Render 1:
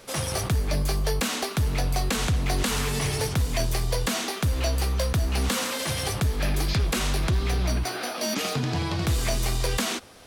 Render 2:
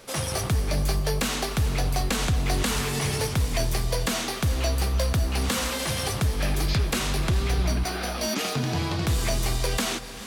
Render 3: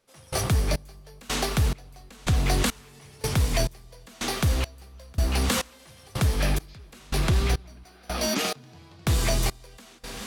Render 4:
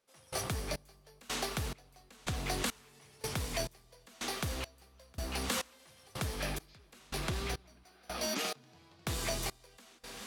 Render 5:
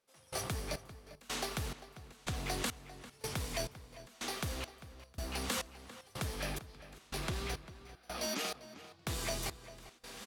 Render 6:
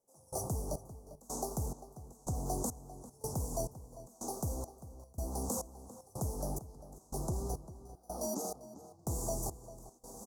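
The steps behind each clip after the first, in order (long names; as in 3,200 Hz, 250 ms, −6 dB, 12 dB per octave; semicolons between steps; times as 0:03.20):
reverb whose tail is shaped and stops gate 470 ms rising, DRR 11.5 dB
gate pattern "...xxxx.." 139 BPM −24 dB; level +1.5 dB
low-shelf EQ 170 Hz −10 dB; level −8 dB
slap from a distant wall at 68 metres, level −14 dB; level −2 dB
Chebyshev band-stop filter 880–6,400 Hz, order 3; level +3 dB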